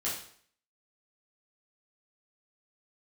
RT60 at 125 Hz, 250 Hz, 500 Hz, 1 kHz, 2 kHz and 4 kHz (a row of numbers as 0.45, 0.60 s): 0.55, 0.55, 0.55, 0.55, 0.55, 0.55 s